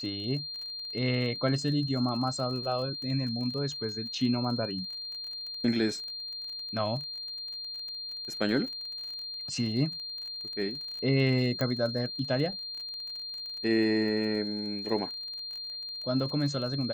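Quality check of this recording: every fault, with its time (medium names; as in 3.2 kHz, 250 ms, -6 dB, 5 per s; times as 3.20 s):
crackle 33 per s -38 dBFS
whine 4.2 kHz -36 dBFS
11.61 s: pop -17 dBFS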